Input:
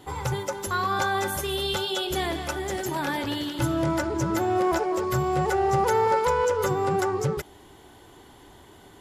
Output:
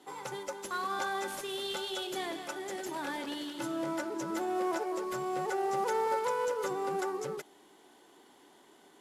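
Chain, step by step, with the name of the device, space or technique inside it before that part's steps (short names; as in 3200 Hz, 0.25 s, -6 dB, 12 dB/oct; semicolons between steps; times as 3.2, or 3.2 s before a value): early wireless headset (HPF 210 Hz 24 dB/oct; CVSD 64 kbps); gain -8.5 dB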